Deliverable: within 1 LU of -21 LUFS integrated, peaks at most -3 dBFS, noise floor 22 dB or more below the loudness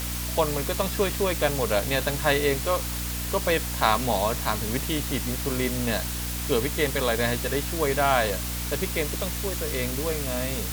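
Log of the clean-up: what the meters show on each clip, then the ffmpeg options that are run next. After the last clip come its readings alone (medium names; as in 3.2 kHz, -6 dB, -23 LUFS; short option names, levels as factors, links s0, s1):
hum 60 Hz; highest harmonic 300 Hz; hum level -30 dBFS; noise floor -31 dBFS; noise floor target -48 dBFS; loudness -25.5 LUFS; peak level -6.0 dBFS; loudness target -21.0 LUFS
-> -af "bandreject=f=60:t=h:w=4,bandreject=f=120:t=h:w=4,bandreject=f=180:t=h:w=4,bandreject=f=240:t=h:w=4,bandreject=f=300:t=h:w=4"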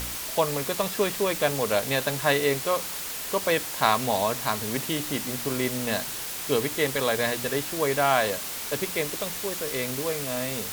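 hum not found; noise floor -34 dBFS; noise floor target -48 dBFS
-> -af "afftdn=nr=14:nf=-34"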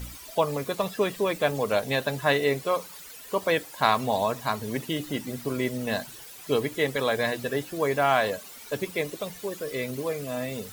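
noise floor -45 dBFS; noise floor target -50 dBFS
-> -af "afftdn=nr=6:nf=-45"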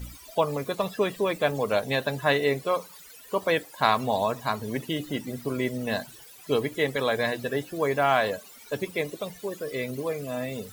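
noise floor -49 dBFS; noise floor target -50 dBFS
-> -af "afftdn=nr=6:nf=-49"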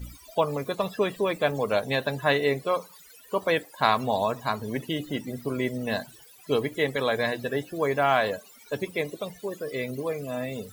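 noise floor -52 dBFS; loudness -27.5 LUFS; peak level -7.0 dBFS; loudness target -21.0 LUFS
-> -af "volume=2.11,alimiter=limit=0.708:level=0:latency=1"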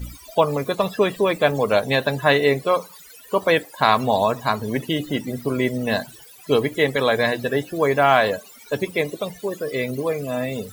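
loudness -21.5 LUFS; peak level -3.0 dBFS; noise floor -45 dBFS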